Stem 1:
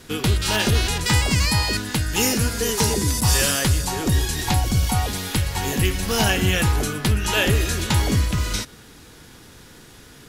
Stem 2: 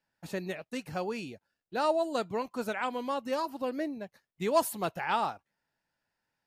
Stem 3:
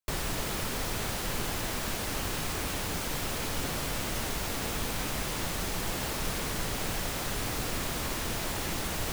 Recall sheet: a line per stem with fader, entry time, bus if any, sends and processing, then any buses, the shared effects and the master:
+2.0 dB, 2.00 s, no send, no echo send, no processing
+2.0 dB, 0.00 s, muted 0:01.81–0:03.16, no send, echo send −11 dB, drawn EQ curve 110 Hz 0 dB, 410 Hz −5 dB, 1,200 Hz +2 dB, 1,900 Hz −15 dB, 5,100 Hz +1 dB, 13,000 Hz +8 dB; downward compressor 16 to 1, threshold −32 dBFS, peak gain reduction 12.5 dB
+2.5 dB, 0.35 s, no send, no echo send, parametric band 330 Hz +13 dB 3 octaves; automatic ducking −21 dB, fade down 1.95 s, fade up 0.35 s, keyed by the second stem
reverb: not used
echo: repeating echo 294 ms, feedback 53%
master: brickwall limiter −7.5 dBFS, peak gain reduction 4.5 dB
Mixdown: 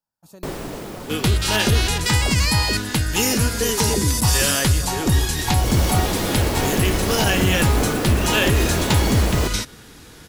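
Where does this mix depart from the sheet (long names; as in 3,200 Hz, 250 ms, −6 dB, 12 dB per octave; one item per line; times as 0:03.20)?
stem 1: entry 2.00 s → 1.00 s
stem 2 +2.0 dB → −5.0 dB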